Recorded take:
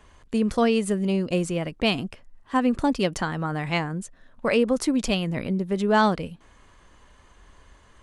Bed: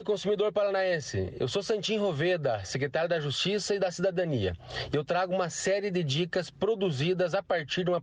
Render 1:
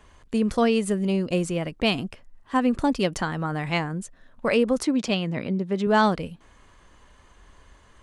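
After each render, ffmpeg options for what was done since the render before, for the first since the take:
ffmpeg -i in.wav -filter_complex "[0:a]asettb=1/sr,asplit=3[link_01][link_02][link_03];[link_01]atrim=end=4.834[link_04];[link_02]atrim=start=4.83:end=5.87,asetpts=PTS-STARTPTS,afade=type=in:duration=0.004:curve=qsin,afade=type=out:start_time=1.036:duration=0.004:curve=qsin,highpass=110,lowpass=6200[link_05];[link_03]atrim=start=5.866[link_06];[link_04][link_05]acrossfade=duration=0.004:curve1=hsin:curve2=qsin[link_07];[link_07][link_06]acrossfade=duration=0.004:curve1=qsin:curve2=hsin" out.wav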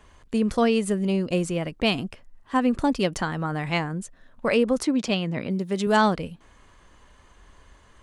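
ffmpeg -i in.wav -filter_complex "[0:a]asettb=1/sr,asplit=3[link_01][link_02][link_03];[link_01]atrim=end=5.504[link_04];[link_02]atrim=start=5.5:end=5.97,asetpts=PTS-STARTPTS,afade=type=in:duration=0.004:curve=qsin,afade=type=out:start_time=0.466:duration=0.004:curve=qsin,aemphasis=mode=production:type=75fm[link_05];[link_03]atrim=start=5.966[link_06];[link_04][link_05]acrossfade=duration=0.004:curve1=hsin:curve2=qsin[link_07];[link_07][link_06]acrossfade=duration=0.004:curve1=qsin:curve2=hsin" out.wav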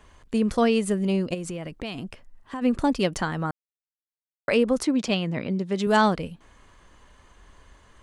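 ffmpeg -i in.wav -filter_complex "[0:a]asplit=3[link_01][link_02][link_03];[link_01]afade=type=out:start_time=1.33:duration=0.02[link_04];[link_02]acompressor=threshold=-29dB:ratio=6:attack=3.2:release=140:knee=1:detection=peak,afade=type=in:start_time=1.33:duration=0.02,afade=type=out:start_time=2.61:duration=0.02[link_05];[link_03]afade=type=in:start_time=2.61:duration=0.02[link_06];[link_04][link_05][link_06]amix=inputs=3:normalize=0,asettb=1/sr,asplit=3[link_07][link_08][link_09];[link_07]atrim=end=5.384[link_10];[link_08]atrim=start=5.38:end=5.82,asetpts=PTS-STARTPTS,afade=type=in:duration=0.004:curve=qsin,afade=type=out:start_time=0.436:duration=0.004:curve=qsin,lowpass=6900[link_11];[link_09]atrim=start=5.816[link_12];[link_10][link_11]acrossfade=duration=0.004:curve1=hsin:curve2=qsin[link_13];[link_13][link_12]acrossfade=duration=0.004:curve1=qsin:curve2=hsin,asplit=3[link_14][link_15][link_16];[link_14]atrim=end=3.51,asetpts=PTS-STARTPTS,afade=type=out:start_time=3.506:duration=0.004:curve=hsin[link_17];[link_15]atrim=start=3.51:end=4.48,asetpts=PTS-STARTPTS,volume=0[link_18];[link_16]atrim=start=4.48,asetpts=PTS-STARTPTS,afade=type=in:duration=0.004:curve=hsin[link_19];[link_17][link_18][link_19]concat=n=3:v=0:a=1" out.wav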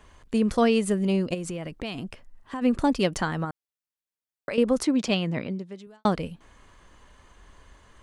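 ffmpeg -i in.wav -filter_complex "[0:a]asettb=1/sr,asplit=3[link_01][link_02][link_03];[link_01]atrim=end=3.444[link_04];[link_02]atrim=start=3.44:end=4.58,asetpts=PTS-STARTPTS,afade=type=in:duration=0.004:curve=qsin,afade=type=out:start_time=1.136:duration=0.004:curve=qsin,acompressor=threshold=-27dB:ratio=6:attack=3.2:release=140:knee=1:detection=peak[link_05];[link_03]atrim=start=4.576[link_06];[link_04][link_05]acrossfade=duration=0.004:curve1=hsin:curve2=qsin[link_07];[link_07][link_06]acrossfade=duration=0.004:curve1=qsin:curve2=hsin,asplit=2[link_08][link_09];[link_08]atrim=end=6.05,asetpts=PTS-STARTPTS,afade=type=out:start_time=5.37:duration=0.68:curve=qua[link_10];[link_09]atrim=start=6.05,asetpts=PTS-STARTPTS,afade=type=in:duration=0.004:curve=hsin[link_11];[link_10][link_11]concat=n=2:v=0:a=1" out.wav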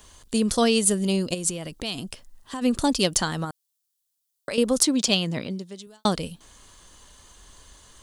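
ffmpeg -i in.wav -af "aexciter=amount=3.4:drive=7.2:freq=3200" out.wav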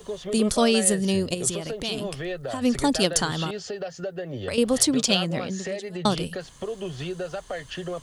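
ffmpeg -i in.wav -i bed.wav -filter_complex "[1:a]volume=-4.5dB[link_01];[0:a][link_01]amix=inputs=2:normalize=0" out.wav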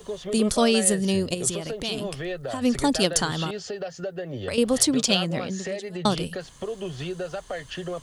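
ffmpeg -i in.wav -af anull out.wav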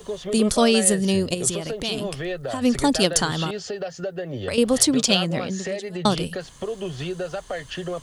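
ffmpeg -i in.wav -af "volume=2.5dB" out.wav

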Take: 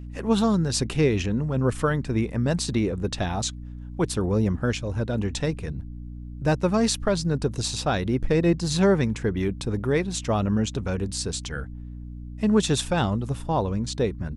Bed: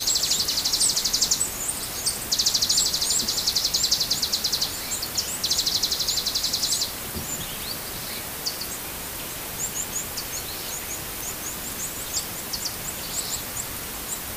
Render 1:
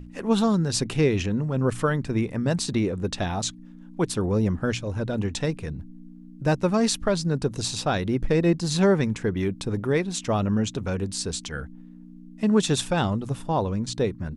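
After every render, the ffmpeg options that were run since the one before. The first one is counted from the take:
ffmpeg -i in.wav -af "bandreject=frequency=60:width_type=h:width=6,bandreject=frequency=120:width_type=h:width=6" out.wav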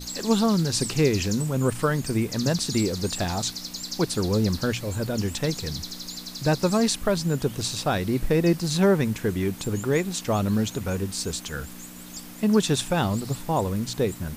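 ffmpeg -i in.wav -i bed.wav -filter_complex "[1:a]volume=-12.5dB[link_01];[0:a][link_01]amix=inputs=2:normalize=0" out.wav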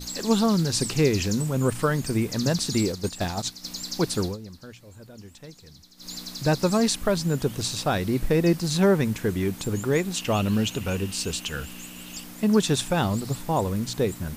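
ffmpeg -i in.wav -filter_complex "[0:a]asplit=3[link_01][link_02][link_03];[link_01]afade=type=out:start_time=2.91:duration=0.02[link_04];[link_02]agate=range=-8dB:threshold=-28dB:ratio=16:release=100:detection=peak,afade=type=in:start_time=2.91:duration=0.02,afade=type=out:start_time=3.63:duration=0.02[link_05];[link_03]afade=type=in:start_time=3.63:duration=0.02[link_06];[link_04][link_05][link_06]amix=inputs=3:normalize=0,asettb=1/sr,asplit=3[link_07][link_08][link_09];[link_07]atrim=end=10.164[link_10];[link_08]atrim=start=10.16:end=12.24,asetpts=PTS-STARTPTS,afade=type=in:duration=0.004:curve=qsin,afade=type=out:start_time=2.076:duration=0.004:curve=qsin,equalizer=frequency=2800:width_type=o:width=0.32:gain=14[link_11];[link_09]atrim=start=12.236[link_12];[link_10][link_11]acrossfade=duration=0.004:curve1=hsin:curve2=qsin[link_13];[link_13][link_12]acrossfade=duration=0.004:curve1=qsin:curve2=hsin,asplit=3[link_14][link_15][link_16];[link_14]atrim=end=4.37,asetpts=PTS-STARTPTS,afade=type=out:start_time=4.22:duration=0.15:silence=0.125893[link_17];[link_15]atrim=start=4.37:end=5.97,asetpts=PTS-STARTPTS,volume=-18dB[link_18];[link_16]atrim=start=5.97,asetpts=PTS-STARTPTS,afade=type=in:duration=0.15:silence=0.125893[link_19];[link_17][link_18][link_19]concat=n=3:v=0:a=1" out.wav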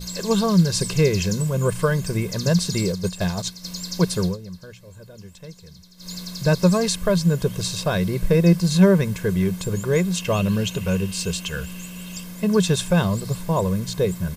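ffmpeg -i in.wav -af "equalizer=frequency=180:width=4.5:gain=12.5,aecho=1:1:1.9:0.68" out.wav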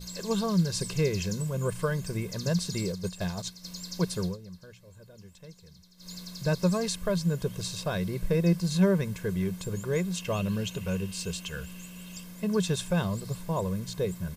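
ffmpeg -i in.wav -af "volume=-8.5dB" out.wav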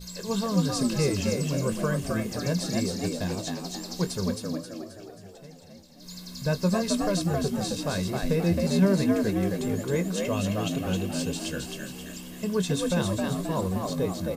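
ffmpeg -i in.wav -filter_complex "[0:a]asplit=2[link_01][link_02];[link_02]adelay=21,volume=-11.5dB[link_03];[link_01][link_03]amix=inputs=2:normalize=0,asplit=2[link_04][link_05];[link_05]asplit=6[link_06][link_07][link_08][link_09][link_10][link_11];[link_06]adelay=266,afreqshift=68,volume=-3dB[link_12];[link_07]adelay=532,afreqshift=136,volume=-9.7dB[link_13];[link_08]adelay=798,afreqshift=204,volume=-16.5dB[link_14];[link_09]adelay=1064,afreqshift=272,volume=-23.2dB[link_15];[link_10]adelay=1330,afreqshift=340,volume=-30dB[link_16];[link_11]adelay=1596,afreqshift=408,volume=-36.7dB[link_17];[link_12][link_13][link_14][link_15][link_16][link_17]amix=inputs=6:normalize=0[link_18];[link_04][link_18]amix=inputs=2:normalize=0" out.wav

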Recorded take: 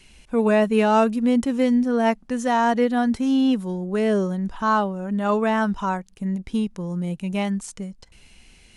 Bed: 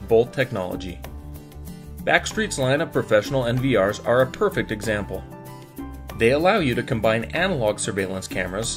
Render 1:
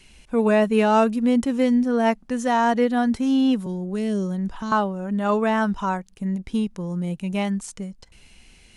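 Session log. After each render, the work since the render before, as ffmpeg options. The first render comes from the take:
ffmpeg -i in.wav -filter_complex "[0:a]asettb=1/sr,asplit=3[link_01][link_02][link_03];[link_01]atrim=end=3.664[link_04];[link_02]atrim=start=3.66:end=4.72,asetpts=PTS-STARTPTS,afade=type=in:duration=0.004:curve=qsin,afade=type=out:start_time=1.056:duration=0.004:curve=qsin,acrossover=split=330|3000[link_05][link_06][link_07];[link_06]acompressor=threshold=-35dB:ratio=6:attack=3.2:release=140:knee=2.83:detection=peak[link_08];[link_05][link_08][link_07]amix=inputs=3:normalize=0[link_09];[link_03]atrim=start=4.716[link_10];[link_04][link_09]acrossfade=duration=0.004:curve1=hsin:curve2=qsin[link_11];[link_11][link_10]acrossfade=duration=0.004:curve1=qsin:curve2=hsin" out.wav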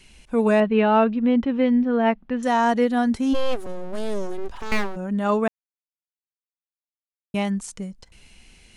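ffmpeg -i in.wav -filter_complex "[0:a]asettb=1/sr,asplit=3[link_01][link_02][link_03];[link_01]atrim=end=0.604[link_04];[link_02]atrim=start=0.6:end=2.43,asetpts=PTS-STARTPTS,afade=type=in:duration=0.004:curve=qsin,afade=type=out:start_time=1.826:duration=0.004:curve=qsin,lowpass=frequency=3400:width=0.5412,lowpass=frequency=3400:width=1.3066[link_05];[link_03]atrim=start=2.426[link_06];[link_04][link_05]acrossfade=duration=0.004:curve1=hsin:curve2=qsin[link_07];[link_07][link_06]acrossfade=duration=0.004:curve1=qsin:curve2=hsin,asplit=3[link_08][link_09][link_10];[link_08]afade=type=out:start_time=3.33:duration=0.02[link_11];[link_09]aeval=exprs='abs(val(0))':channel_layout=same,afade=type=in:start_time=3.33:duration=0.02,afade=type=out:start_time=4.95:duration=0.02[link_12];[link_10]afade=type=in:start_time=4.95:duration=0.02[link_13];[link_11][link_12][link_13]amix=inputs=3:normalize=0,asplit=3[link_14][link_15][link_16];[link_14]atrim=end=5.48,asetpts=PTS-STARTPTS,afade=type=out:start_time=5.476:duration=0.004:curve=hsin[link_17];[link_15]atrim=start=5.48:end=7.34,asetpts=PTS-STARTPTS,volume=0[link_18];[link_16]atrim=start=7.34,asetpts=PTS-STARTPTS,afade=type=in:duration=0.004:curve=hsin[link_19];[link_17][link_18][link_19]concat=n=3:v=0:a=1" out.wav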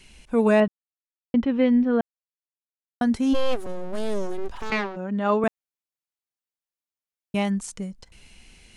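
ffmpeg -i in.wav -filter_complex "[0:a]asettb=1/sr,asplit=3[link_01][link_02][link_03];[link_01]atrim=end=4.704[link_04];[link_02]atrim=start=4.7:end=5.44,asetpts=PTS-STARTPTS,afade=type=in:duration=0.004:curve=qsin,afade=type=out:start_time=0.736:duration=0.004:curve=qsin,acrossover=split=160 5600:gain=0.158 1 0.0794[link_05][link_06][link_07];[link_05][link_06][link_07]amix=inputs=3:normalize=0[link_08];[link_03]atrim=start=5.436[link_09];[link_04][link_08]acrossfade=duration=0.004:curve1=hsin:curve2=qsin[link_10];[link_10][link_09]acrossfade=duration=0.004:curve1=qsin:curve2=hsin,asplit=5[link_11][link_12][link_13][link_14][link_15];[link_11]atrim=end=0.68,asetpts=PTS-STARTPTS,afade=type=out:start_time=0.676:duration=0.004:curve=hsin[link_16];[link_12]atrim=start=0.68:end=1.34,asetpts=PTS-STARTPTS,volume=0[link_17];[link_13]atrim=start=1.34:end=2.01,asetpts=PTS-STARTPTS,afade=type=in:duration=0.004:curve=hsin,afade=type=out:start_time=0.666:duration=0.004:curve=hsin[link_18];[link_14]atrim=start=2.01:end=3.01,asetpts=PTS-STARTPTS,volume=0[link_19];[link_15]atrim=start=3.01,asetpts=PTS-STARTPTS,afade=type=in:duration=0.004:curve=hsin[link_20];[link_16][link_17][link_18][link_19][link_20]concat=n=5:v=0:a=1" out.wav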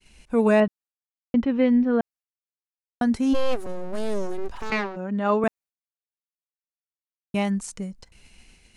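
ffmpeg -i in.wav -af "agate=range=-33dB:threshold=-46dB:ratio=3:detection=peak,equalizer=frequency=3300:width=6.2:gain=-4" out.wav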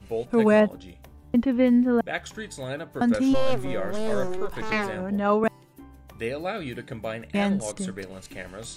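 ffmpeg -i in.wav -i bed.wav -filter_complex "[1:a]volume=-12.5dB[link_01];[0:a][link_01]amix=inputs=2:normalize=0" out.wav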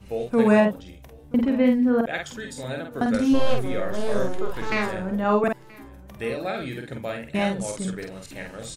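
ffmpeg -i in.wav -filter_complex "[0:a]asplit=2[link_01][link_02];[link_02]adelay=48,volume=-4dB[link_03];[link_01][link_03]amix=inputs=2:normalize=0,aecho=1:1:978:0.0708" out.wav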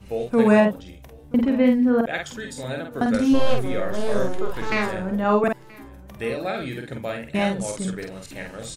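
ffmpeg -i in.wav -af "volume=1.5dB" out.wav

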